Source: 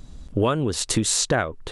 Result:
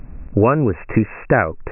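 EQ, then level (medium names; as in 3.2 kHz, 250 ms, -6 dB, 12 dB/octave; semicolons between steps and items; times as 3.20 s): brick-wall FIR low-pass 2.7 kHz; +7.0 dB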